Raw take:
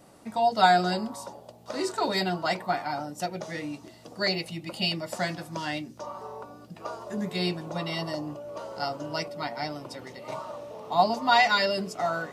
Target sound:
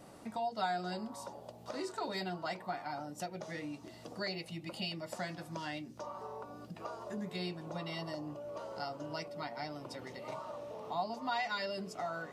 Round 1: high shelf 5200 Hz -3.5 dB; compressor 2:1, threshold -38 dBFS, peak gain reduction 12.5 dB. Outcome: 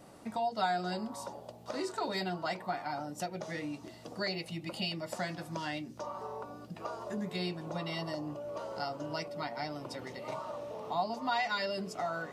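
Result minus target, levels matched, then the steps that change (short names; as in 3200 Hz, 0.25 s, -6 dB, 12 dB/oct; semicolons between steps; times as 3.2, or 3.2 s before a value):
compressor: peak gain reduction -3.5 dB
change: compressor 2:1, threshold -45 dBFS, peak gain reduction 16 dB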